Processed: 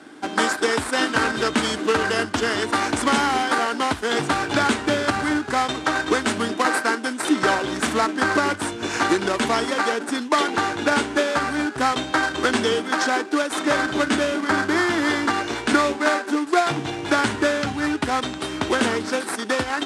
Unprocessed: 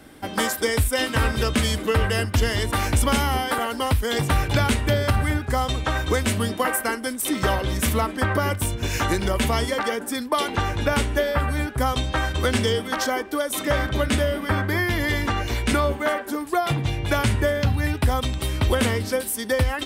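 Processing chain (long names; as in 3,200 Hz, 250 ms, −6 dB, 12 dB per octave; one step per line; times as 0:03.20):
in parallel at −1.5 dB: sample-rate reduction 3,100 Hz, jitter 20%
on the sum: loudspeaker in its box 300–8,800 Hz, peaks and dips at 310 Hz +5 dB, 530 Hz −7 dB, 1,500 Hz +5 dB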